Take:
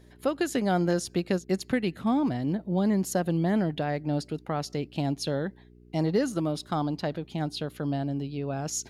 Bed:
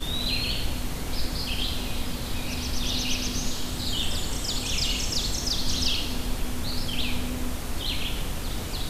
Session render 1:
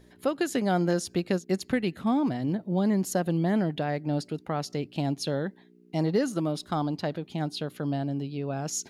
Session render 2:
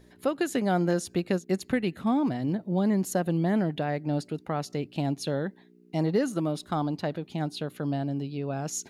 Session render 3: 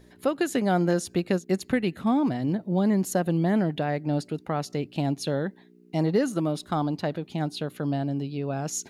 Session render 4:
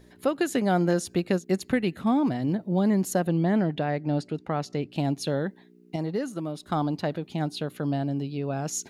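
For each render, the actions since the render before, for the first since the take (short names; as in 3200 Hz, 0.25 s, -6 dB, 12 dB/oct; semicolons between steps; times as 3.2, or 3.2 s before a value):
de-hum 60 Hz, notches 2
dynamic EQ 5100 Hz, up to -5 dB, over -54 dBFS, Q 2.5; notch 3200 Hz, Q 28
gain +2 dB
3.27–4.92 air absorption 51 m; 5.96–6.66 gain -6 dB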